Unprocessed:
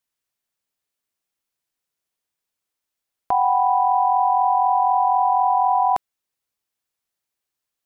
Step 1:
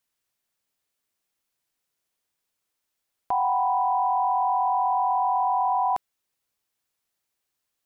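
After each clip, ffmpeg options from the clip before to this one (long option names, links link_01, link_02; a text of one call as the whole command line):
ffmpeg -i in.wav -af "alimiter=limit=-19.5dB:level=0:latency=1:release=11,volume=2.5dB" out.wav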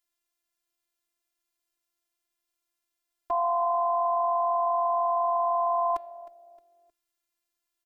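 ffmpeg -i in.wav -filter_complex "[0:a]bandreject=frequency=213.4:width_type=h:width=4,bandreject=frequency=426.8:width_type=h:width=4,bandreject=frequency=640.2:width_type=h:width=4,bandreject=frequency=853.6:width_type=h:width=4,bandreject=frequency=1067:width_type=h:width=4,bandreject=frequency=1280.4:width_type=h:width=4,bandreject=frequency=1493.8:width_type=h:width=4,bandreject=frequency=1707.2:width_type=h:width=4,bandreject=frequency=1920.6:width_type=h:width=4,bandreject=frequency=2134:width_type=h:width=4,bandreject=frequency=2347.4:width_type=h:width=4,bandreject=frequency=2560.8:width_type=h:width=4,bandreject=frequency=2774.2:width_type=h:width=4,bandreject=frequency=2987.6:width_type=h:width=4,bandreject=frequency=3201:width_type=h:width=4,bandreject=frequency=3414.4:width_type=h:width=4,bandreject=frequency=3627.8:width_type=h:width=4,bandreject=frequency=3841.2:width_type=h:width=4,bandreject=frequency=4054.6:width_type=h:width=4,bandreject=frequency=4268:width_type=h:width=4,bandreject=frequency=4481.4:width_type=h:width=4,bandreject=frequency=4694.8:width_type=h:width=4,asplit=4[link_01][link_02][link_03][link_04];[link_02]adelay=311,afreqshift=-70,volume=-18dB[link_05];[link_03]adelay=622,afreqshift=-140,volume=-26dB[link_06];[link_04]adelay=933,afreqshift=-210,volume=-33.9dB[link_07];[link_01][link_05][link_06][link_07]amix=inputs=4:normalize=0,afftfilt=real='hypot(re,im)*cos(PI*b)':imag='0':win_size=512:overlap=0.75" out.wav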